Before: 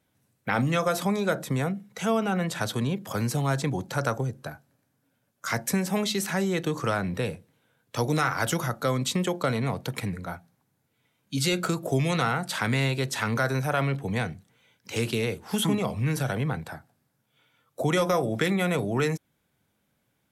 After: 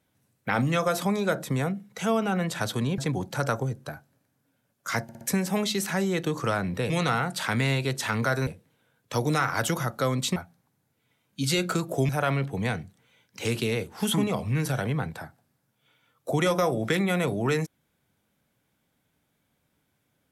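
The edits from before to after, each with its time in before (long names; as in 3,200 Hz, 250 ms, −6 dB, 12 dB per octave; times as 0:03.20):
0:02.98–0:03.56: remove
0:05.61: stutter 0.06 s, 4 plays
0:09.19–0:10.30: remove
0:12.03–0:13.60: move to 0:07.30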